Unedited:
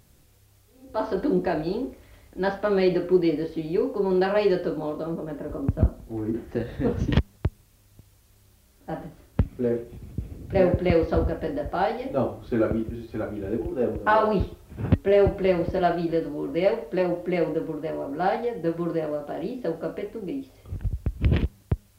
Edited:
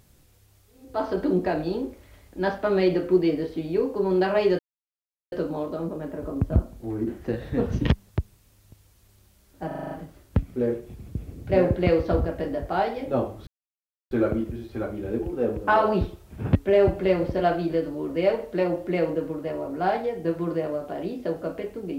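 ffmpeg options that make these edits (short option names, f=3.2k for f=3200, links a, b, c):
-filter_complex "[0:a]asplit=9[a][b][c][d][e][f][g][h][i];[a]atrim=end=4.59,asetpts=PTS-STARTPTS,afade=t=out:st=4.586:d=0.004:c=hsin,apad=pad_dur=0.73[j];[b]atrim=start=4.59:end=8.982,asetpts=PTS-STARTPTS,afade=t=in:d=0.004:c=hsin[k];[c]atrim=start=8.938:end=8.982[l];[d]atrim=start=8.938:end=8.982[m];[e]atrim=start=8.938:end=8.982[n];[f]atrim=start=8.938:end=8.982[o];[g]atrim=start=8.938:end=8.982[p];[h]atrim=start=8.938:end=12.5,asetpts=PTS-STARTPTS,afade=t=out:st=3.558:d=0.004:c=hsin,apad=pad_dur=0.64[q];[i]atrim=start=12.5,asetpts=PTS-STARTPTS,afade=t=in:d=0.004:c=hsin[r];[j][k]concat=n=2:v=0:a=1[s];[s][l]acrossfade=d=0.004:c1=hsin:c2=hsin[t];[t][m]acrossfade=d=0.004:c1=hsin:c2=hsin[u];[u][n]acrossfade=d=0.004:c1=hsin:c2=hsin[v];[v][o]acrossfade=d=0.004:c1=hsin:c2=hsin[w];[w][p]acrossfade=d=0.004:c1=hsin:c2=hsin[x];[q][r]concat=n=2:v=0:a=1[y];[x][y]acrossfade=d=0.004:c1=hsin:c2=hsin"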